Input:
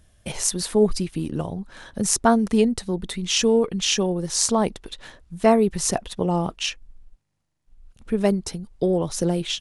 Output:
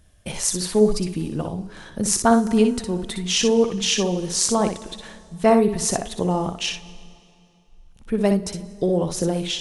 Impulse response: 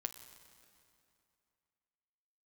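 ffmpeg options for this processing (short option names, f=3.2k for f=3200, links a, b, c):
-filter_complex "[0:a]asplit=2[a][b];[1:a]atrim=start_sample=2205,adelay=61[c];[b][c]afir=irnorm=-1:irlink=0,volume=-5dB[d];[a][d]amix=inputs=2:normalize=0"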